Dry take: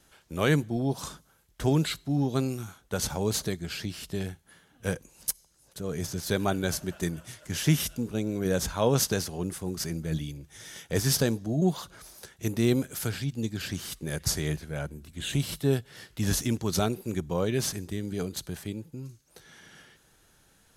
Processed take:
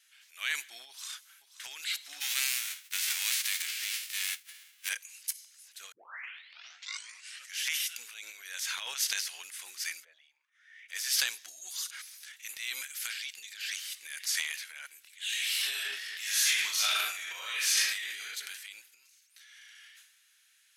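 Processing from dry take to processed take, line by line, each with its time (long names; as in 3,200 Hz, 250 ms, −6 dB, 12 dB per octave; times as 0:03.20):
0:00.88–0:01.67: delay throw 530 ms, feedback 40%, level −14 dB
0:02.20–0:04.88: spectral envelope flattened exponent 0.3
0:05.92: tape start 1.67 s
0:10.03–0:10.88: resonant band-pass 500 Hz → 2,300 Hz, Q 6.2
0:11.48–0:11.91: flat-topped bell 7,900 Hz +12 dB
0:15.30–0:18.20: thrown reverb, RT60 1 s, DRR −8 dB
whole clip: Chebyshev high-pass filter 2,100 Hz, order 3; high-shelf EQ 3,300 Hz −8.5 dB; transient designer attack −3 dB, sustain +11 dB; level +6 dB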